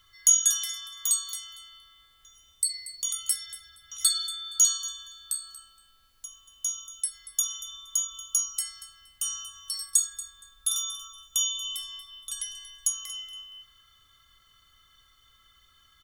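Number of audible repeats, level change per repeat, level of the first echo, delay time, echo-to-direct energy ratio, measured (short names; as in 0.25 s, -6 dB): 2, -15.5 dB, -16.0 dB, 0.234 s, -16.0 dB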